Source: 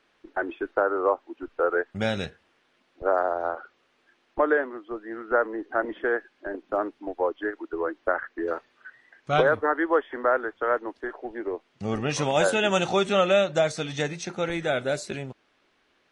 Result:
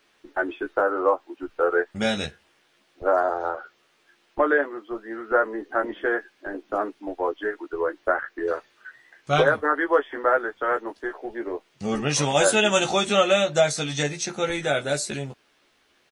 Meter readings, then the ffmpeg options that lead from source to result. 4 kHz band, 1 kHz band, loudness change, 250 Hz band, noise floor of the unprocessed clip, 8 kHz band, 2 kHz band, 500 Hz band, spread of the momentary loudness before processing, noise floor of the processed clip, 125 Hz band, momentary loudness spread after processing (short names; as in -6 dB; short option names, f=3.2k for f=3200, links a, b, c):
+5.5 dB, +2.0 dB, +2.0 dB, +1.5 dB, -68 dBFS, +9.5 dB, +3.0 dB, +1.5 dB, 13 LU, -64 dBFS, +2.0 dB, 13 LU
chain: -filter_complex "[0:a]crystalizer=i=2:c=0,asplit=2[a][b];[b]adelay=14,volume=-4dB[c];[a][c]amix=inputs=2:normalize=0"